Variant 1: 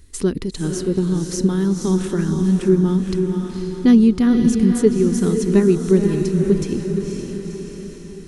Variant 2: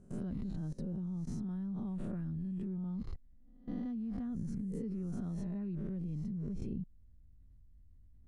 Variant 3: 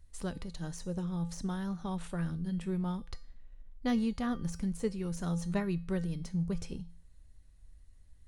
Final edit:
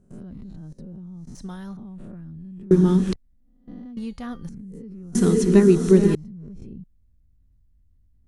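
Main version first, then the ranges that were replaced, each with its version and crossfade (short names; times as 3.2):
2
1.35–1.77 from 3
2.71–3.13 from 1
3.97–4.49 from 3
5.15–6.15 from 1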